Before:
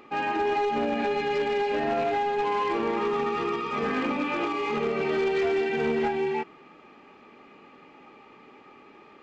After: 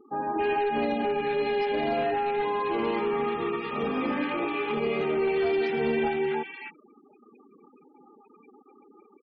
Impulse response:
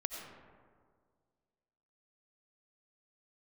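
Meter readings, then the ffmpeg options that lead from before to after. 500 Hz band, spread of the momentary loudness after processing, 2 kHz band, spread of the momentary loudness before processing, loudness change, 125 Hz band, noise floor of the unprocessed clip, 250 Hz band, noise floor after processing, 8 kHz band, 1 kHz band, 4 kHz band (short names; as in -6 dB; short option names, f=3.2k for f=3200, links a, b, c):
0.0 dB, 4 LU, -1.5 dB, 3 LU, -0.5 dB, 0.0 dB, -52 dBFS, 0.0 dB, -58 dBFS, n/a, -1.5 dB, -1.5 dB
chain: -filter_complex "[0:a]acrossover=split=1300[a][b];[b]adelay=270[c];[a][c]amix=inputs=2:normalize=0,afftfilt=real='re*gte(hypot(re,im),0.00891)':imag='im*gte(hypot(re,im),0.00891)':win_size=1024:overlap=0.75"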